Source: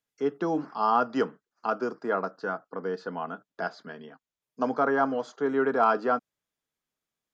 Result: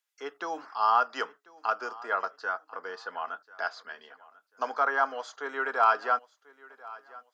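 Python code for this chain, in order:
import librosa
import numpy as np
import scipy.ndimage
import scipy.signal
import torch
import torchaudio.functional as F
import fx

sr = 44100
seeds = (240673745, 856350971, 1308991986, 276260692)

y = scipy.signal.sosfilt(scipy.signal.butter(2, 980.0, 'highpass', fs=sr, output='sos'), x)
y = fx.echo_feedback(y, sr, ms=1041, feedback_pct=28, wet_db=-21.0)
y = y * 10.0 ** (3.5 / 20.0)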